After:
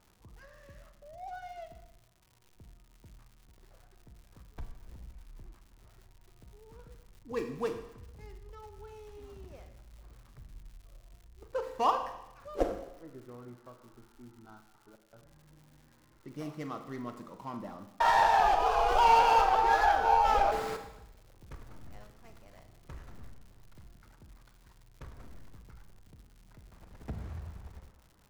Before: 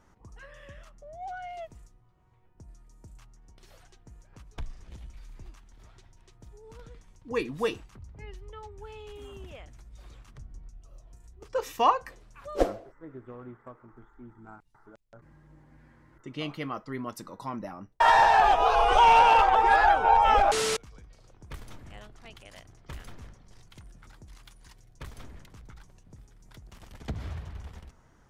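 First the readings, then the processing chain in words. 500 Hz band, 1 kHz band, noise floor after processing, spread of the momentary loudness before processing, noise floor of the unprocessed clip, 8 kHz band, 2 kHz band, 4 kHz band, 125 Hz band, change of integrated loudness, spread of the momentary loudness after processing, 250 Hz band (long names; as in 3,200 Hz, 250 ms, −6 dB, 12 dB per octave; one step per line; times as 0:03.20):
−4.5 dB, −4.5 dB, −63 dBFS, 21 LU, −61 dBFS, −9.0 dB, −6.5 dB, −7.0 dB, −4.5 dB, −5.0 dB, 21 LU, −4.0 dB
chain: running median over 15 samples
four-comb reverb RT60 0.89 s, combs from 33 ms, DRR 7 dB
surface crackle 200 per second −45 dBFS
level −5 dB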